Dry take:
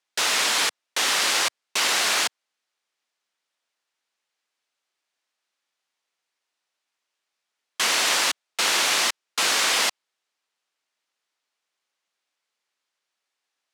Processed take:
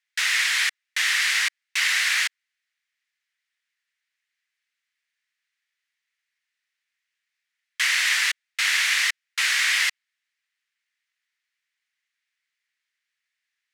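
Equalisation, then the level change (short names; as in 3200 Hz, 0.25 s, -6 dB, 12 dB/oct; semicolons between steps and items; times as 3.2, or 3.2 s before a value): resonant high-pass 1900 Hz, resonance Q 3.7; -4.5 dB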